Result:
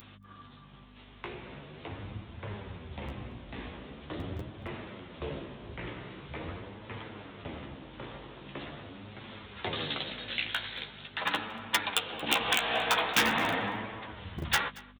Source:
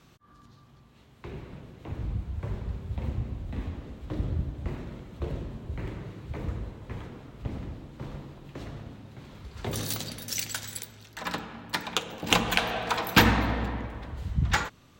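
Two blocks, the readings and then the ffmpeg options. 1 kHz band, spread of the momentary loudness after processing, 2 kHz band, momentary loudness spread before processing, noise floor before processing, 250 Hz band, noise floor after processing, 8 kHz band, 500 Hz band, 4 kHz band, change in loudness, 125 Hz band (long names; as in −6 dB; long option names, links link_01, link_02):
−1.5 dB, 18 LU, −0.5 dB, 18 LU, −57 dBFS, −6.5 dB, −53 dBFS, −5.0 dB, −2.0 dB, 0.0 dB, −2.5 dB, −10.0 dB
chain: -af "bandreject=frequency=60:width_type=h:width=6,bandreject=frequency=120:width_type=h:width=6,bandreject=frequency=180:width_type=h:width=6,bandreject=frequency=240:width_type=h:width=6,bandreject=frequency=300:width_type=h:width=6,aresample=8000,aresample=44100,agate=range=-33dB:threshold=-46dB:ratio=3:detection=peak,lowshelf=frequency=360:gain=2,alimiter=limit=-15.5dB:level=0:latency=1:release=194,acompressor=mode=upward:threshold=-36dB:ratio=2.5,aeval=exprs='val(0)+0.00794*(sin(2*PI*50*n/s)+sin(2*PI*2*50*n/s)/2+sin(2*PI*3*50*n/s)/3+sin(2*PI*4*50*n/s)/4+sin(2*PI*5*50*n/s)/5)':channel_layout=same,aeval=exprs='0.112*(abs(mod(val(0)/0.112+3,4)-2)-1)':channel_layout=same,flanger=delay=9:depth=8.1:regen=21:speed=0.43:shape=sinusoidal,aemphasis=mode=production:type=riaa,aecho=1:1:229:0.0794,volume=5.5dB"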